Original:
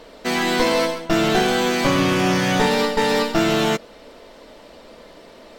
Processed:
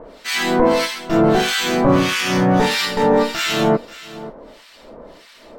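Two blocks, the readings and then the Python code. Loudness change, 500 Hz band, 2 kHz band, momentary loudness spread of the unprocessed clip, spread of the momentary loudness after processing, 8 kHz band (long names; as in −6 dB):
+2.0 dB, +2.5 dB, +1.0 dB, 4 LU, 16 LU, +2.0 dB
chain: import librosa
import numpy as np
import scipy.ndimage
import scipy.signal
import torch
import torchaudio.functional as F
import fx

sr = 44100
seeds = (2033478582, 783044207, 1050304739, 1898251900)

p1 = fx.transient(x, sr, attack_db=-6, sustain_db=0)
p2 = fx.harmonic_tremolo(p1, sr, hz=1.6, depth_pct=100, crossover_hz=1300.0)
p3 = p2 + fx.echo_single(p2, sr, ms=535, db=-17.0, dry=0)
y = p3 * 10.0 ** (7.0 / 20.0)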